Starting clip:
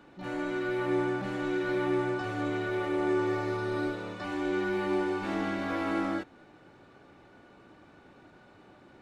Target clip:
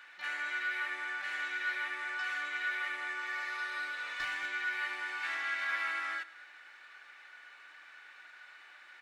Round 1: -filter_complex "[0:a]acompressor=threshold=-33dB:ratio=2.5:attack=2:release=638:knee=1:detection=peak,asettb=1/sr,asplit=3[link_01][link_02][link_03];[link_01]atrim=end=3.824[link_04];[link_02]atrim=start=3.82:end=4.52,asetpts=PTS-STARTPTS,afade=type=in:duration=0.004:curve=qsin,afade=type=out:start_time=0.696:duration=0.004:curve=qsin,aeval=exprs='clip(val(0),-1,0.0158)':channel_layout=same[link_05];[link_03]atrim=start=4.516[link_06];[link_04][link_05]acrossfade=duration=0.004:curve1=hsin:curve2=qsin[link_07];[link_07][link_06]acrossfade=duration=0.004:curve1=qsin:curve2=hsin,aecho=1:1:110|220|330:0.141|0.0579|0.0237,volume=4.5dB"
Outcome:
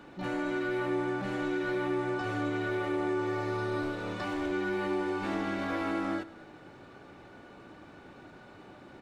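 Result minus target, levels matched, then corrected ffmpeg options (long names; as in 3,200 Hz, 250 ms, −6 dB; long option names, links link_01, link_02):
2,000 Hz band −8.0 dB
-filter_complex "[0:a]acompressor=threshold=-33dB:ratio=2.5:attack=2:release=638:knee=1:detection=peak,highpass=frequency=1800:width_type=q:width=2.7,asettb=1/sr,asplit=3[link_01][link_02][link_03];[link_01]atrim=end=3.824[link_04];[link_02]atrim=start=3.82:end=4.52,asetpts=PTS-STARTPTS,afade=type=in:duration=0.004:curve=qsin,afade=type=out:start_time=0.696:duration=0.004:curve=qsin,aeval=exprs='clip(val(0),-1,0.0158)':channel_layout=same[link_05];[link_03]atrim=start=4.516[link_06];[link_04][link_05]acrossfade=duration=0.004:curve1=hsin:curve2=qsin[link_07];[link_07][link_06]acrossfade=duration=0.004:curve1=qsin:curve2=hsin,aecho=1:1:110|220|330:0.141|0.0579|0.0237,volume=4.5dB"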